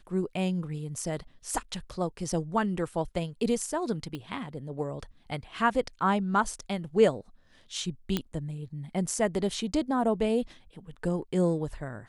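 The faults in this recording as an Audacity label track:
4.150000	4.150000	pop -24 dBFS
8.170000	8.170000	pop -13 dBFS

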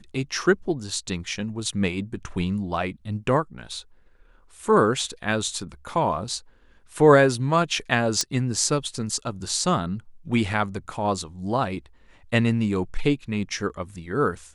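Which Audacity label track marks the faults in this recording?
8.210000	8.210000	pop -8 dBFS

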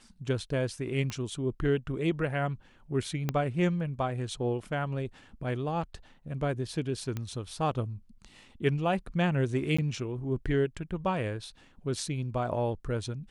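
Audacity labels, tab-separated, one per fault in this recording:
1.100000	1.100000	pop -21 dBFS
3.290000	3.290000	pop -15 dBFS
7.170000	7.170000	pop -21 dBFS
9.770000	9.790000	gap 15 ms

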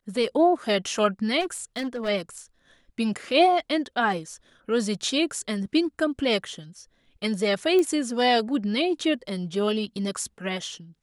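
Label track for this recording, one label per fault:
1.400000	2.090000	clipped -25 dBFS
7.790000	7.790000	pop -14 dBFS

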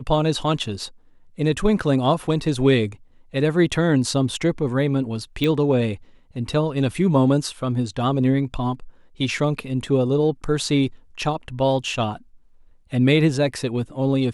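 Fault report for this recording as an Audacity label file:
5.440000	5.440000	pop -11 dBFS

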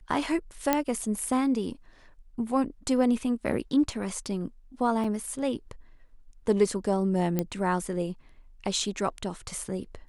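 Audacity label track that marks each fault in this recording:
0.730000	0.730000	pop -8 dBFS
5.040000	5.040000	gap 4.3 ms
7.390000	7.390000	pop -13 dBFS

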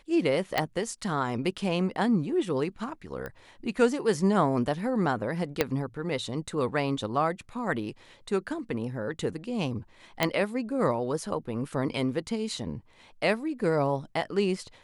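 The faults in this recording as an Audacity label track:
0.580000	0.580000	pop -11 dBFS
3.260000	3.260000	pop -24 dBFS
5.610000	5.610000	pop -8 dBFS
10.230000	10.230000	pop -8 dBFS

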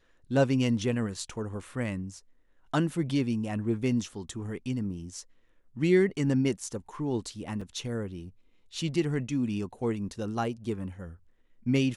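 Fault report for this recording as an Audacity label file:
7.610000	7.610000	gap 4.3 ms

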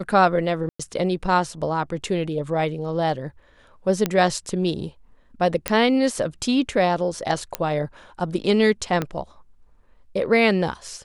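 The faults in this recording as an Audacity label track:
0.690000	0.800000	gap 0.105 s
4.060000	4.060000	pop -7 dBFS
5.680000	5.680000	pop -4 dBFS
7.550000	7.550000	pop -7 dBFS
9.020000	9.020000	pop -11 dBFS

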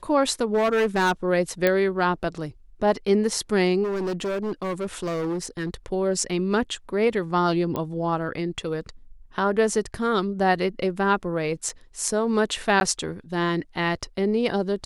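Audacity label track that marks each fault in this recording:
0.540000	1.120000	clipped -17.5 dBFS
1.670000	1.670000	pop -8 dBFS
3.830000	5.740000	clipped -24 dBFS
7.760000	7.760000	pop -16 dBFS
11.690000	11.690000	gap 3.9 ms
12.800000	12.810000	gap

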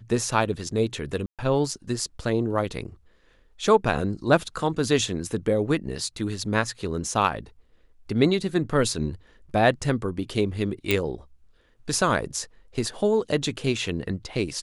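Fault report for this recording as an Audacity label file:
1.260000	1.390000	gap 0.127 s
10.910000	10.910000	pop

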